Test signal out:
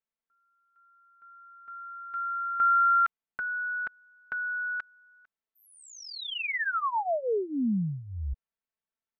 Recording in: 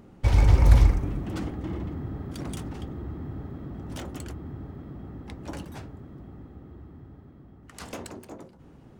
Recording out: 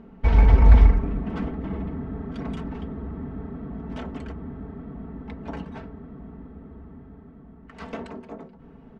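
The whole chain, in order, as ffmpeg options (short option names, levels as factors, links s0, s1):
-af "lowpass=2300,aecho=1:1:4.5:0.78,volume=1.26"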